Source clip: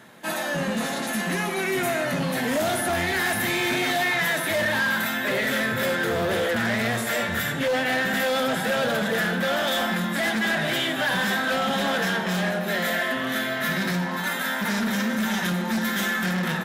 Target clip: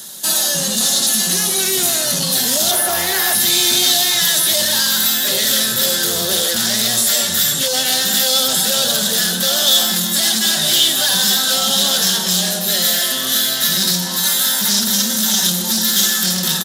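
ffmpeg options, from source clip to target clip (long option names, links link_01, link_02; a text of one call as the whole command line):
ffmpeg -i in.wav -filter_complex "[0:a]aecho=1:1:5.3:0.33,asplit=2[link_01][link_02];[link_02]asoftclip=type=tanh:threshold=-30.5dB,volume=-4dB[link_03];[link_01][link_03]amix=inputs=2:normalize=0,asettb=1/sr,asplit=3[link_04][link_05][link_06];[link_04]atrim=end=2.714[link_07];[link_05]atrim=start=2.71:end=3.35,asetpts=PTS-STARTPTS,afade=type=in:duration=0.004:curve=qsin,afade=type=out:start_time=0.636:duration=0.004:curve=qsin,equalizer=frequency=125:width_type=o:width=1:gain=-3,equalizer=frequency=250:width_type=o:width=1:gain=-6,equalizer=frequency=500:width_type=o:width=1:gain=6,equalizer=frequency=1000:width_type=o:width=1:gain=5,equalizer=frequency=2000:width_type=o:width=1:gain=4,equalizer=frequency=4000:width_type=o:width=1:gain=-6,equalizer=frequency=8000:width_type=o:width=1:gain=-7[link_08];[link_06]atrim=start=3.346[link_09];[link_07][link_08]acrossfade=duration=0.004:curve1=hsin:curve2=qsin[link_10];[link_10][link_09]acrossfade=duration=0.004:curve1=qsin:curve2=hsin,acrossover=split=5200[link_11][link_12];[link_12]acompressor=threshold=-39dB:ratio=4:attack=1:release=60[link_13];[link_11][link_13]amix=inputs=2:normalize=0,aexciter=amount=13.7:drive=6.6:freq=3500,volume=-2.5dB" out.wav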